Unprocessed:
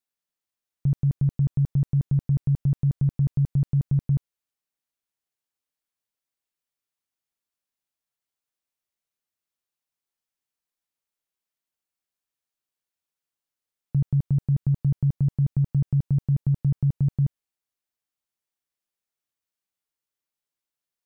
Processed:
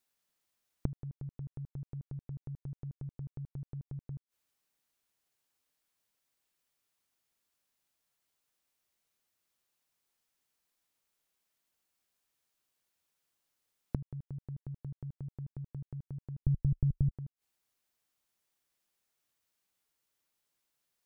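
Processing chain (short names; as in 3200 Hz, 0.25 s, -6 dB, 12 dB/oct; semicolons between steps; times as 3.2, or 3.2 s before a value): flipped gate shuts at -27 dBFS, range -27 dB; 16.42–17.11 tilt -4.5 dB/oct; gain +6.5 dB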